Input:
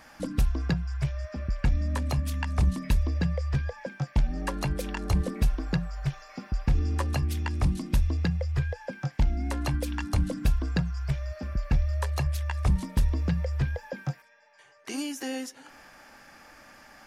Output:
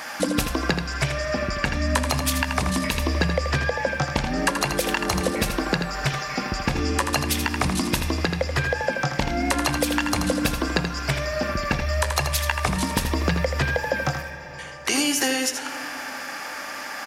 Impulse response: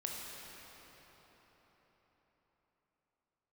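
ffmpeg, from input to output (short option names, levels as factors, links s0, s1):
-filter_complex "[0:a]highpass=f=680:p=1,acompressor=threshold=0.0126:ratio=6,aecho=1:1:81:0.398,asplit=2[s0][s1];[1:a]atrim=start_sample=2205[s2];[s1][s2]afir=irnorm=-1:irlink=0,volume=0.316[s3];[s0][s3]amix=inputs=2:normalize=0,alimiter=level_in=14.1:limit=0.891:release=50:level=0:latency=1,volume=0.531"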